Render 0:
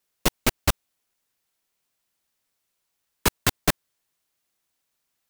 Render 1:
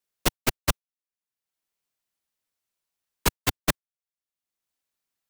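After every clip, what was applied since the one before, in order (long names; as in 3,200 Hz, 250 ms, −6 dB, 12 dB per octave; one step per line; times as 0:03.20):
downward expander −14 dBFS
multiband upward and downward compressor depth 70%
level +4 dB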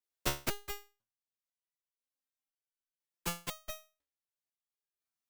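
step-sequenced resonator 2 Hz 72–1,500 Hz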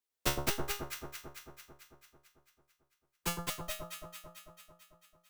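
delay that swaps between a low-pass and a high-pass 111 ms, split 1,300 Hz, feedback 80%, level −4 dB
level +1.5 dB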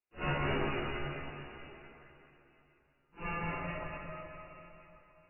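random phases in long frames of 200 ms
linear-phase brick-wall low-pass 2,900 Hz
dense smooth reverb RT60 2.4 s, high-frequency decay 0.85×, pre-delay 0 ms, DRR −1.5 dB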